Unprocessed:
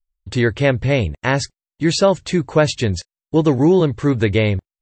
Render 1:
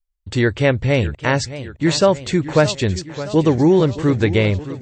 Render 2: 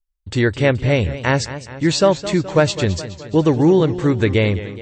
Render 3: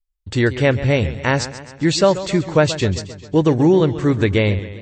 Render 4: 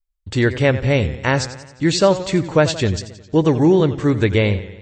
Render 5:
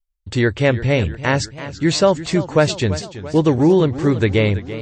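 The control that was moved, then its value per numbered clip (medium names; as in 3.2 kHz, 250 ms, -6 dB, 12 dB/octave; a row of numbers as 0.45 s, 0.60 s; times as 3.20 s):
modulated delay, time: 616 ms, 211 ms, 133 ms, 89 ms, 334 ms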